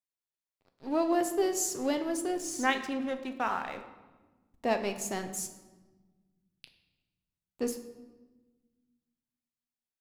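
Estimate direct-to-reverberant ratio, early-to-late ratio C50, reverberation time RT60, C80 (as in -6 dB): 6.5 dB, 10.5 dB, 1.3 s, 12.5 dB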